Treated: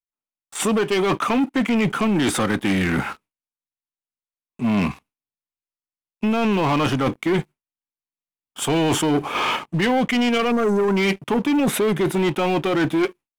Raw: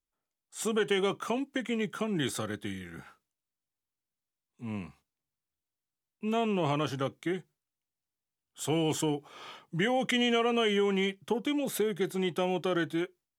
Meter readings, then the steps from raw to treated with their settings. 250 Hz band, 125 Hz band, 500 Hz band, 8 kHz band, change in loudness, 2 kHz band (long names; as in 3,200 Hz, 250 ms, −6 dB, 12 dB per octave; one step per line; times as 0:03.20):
+12.0 dB, +11.5 dB, +8.5 dB, +10.0 dB, +10.0 dB, +10.5 dB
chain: time-frequency box erased 0:10.51–0:10.96, 1,500–5,500 Hz
graphic EQ with 15 bands 250 Hz +6 dB, 1,000 Hz +7 dB, 2,500 Hz +10 dB, 10,000 Hz +7 dB
in parallel at +3 dB: output level in coarse steps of 11 dB
on the sum: high-shelf EQ 2,900 Hz −10.5 dB
reversed playback
downward compressor 16 to 1, threshold −29 dBFS, peak gain reduction 17.5 dB
reversed playback
noise gate with hold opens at −57 dBFS
leveller curve on the samples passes 3
level +6.5 dB